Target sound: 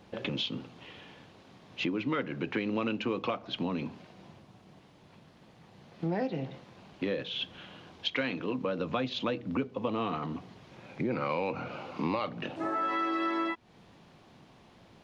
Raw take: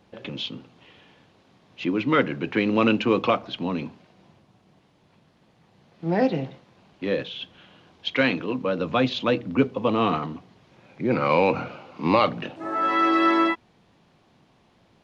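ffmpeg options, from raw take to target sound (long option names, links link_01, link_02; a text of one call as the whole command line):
ffmpeg -i in.wav -af "acompressor=threshold=-33dB:ratio=5,volume=3dB" out.wav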